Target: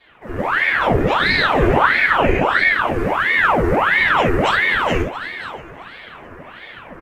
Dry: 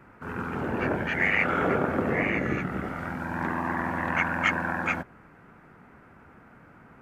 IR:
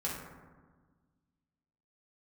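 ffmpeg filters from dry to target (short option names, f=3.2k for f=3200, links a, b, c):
-filter_complex "[0:a]acrossover=split=300|3000[a][b][c];[b]acompressor=threshold=-48dB:ratio=2[d];[a][d][c]amix=inputs=3:normalize=0,asplit=6[e][f][g][h][i][j];[f]adelay=336,afreqshift=50,volume=-17dB[k];[g]adelay=672,afreqshift=100,volume=-22.7dB[l];[h]adelay=1008,afreqshift=150,volume=-28.4dB[m];[i]adelay=1344,afreqshift=200,volume=-34dB[n];[j]adelay=1680,afreqshift=250,volume=-39.7dB[o];[e][k][l][m][n][o]amix=inputs=6:normalize=0,dynaudnorm=f=230:g=3:m=12dB,aecho=1:1:531:0.2[p];[1:a]atrim=start_sample=2205,atrim=end_sample=3969[q];[p][q]afir=irnorm=-1:irlink=0,aeval=exprs='val(0)*sin(2*PI*1100*n/s+1100*0.85/1.5*sin(2*PI*1.5*n/s))':c=same,volume=1dB"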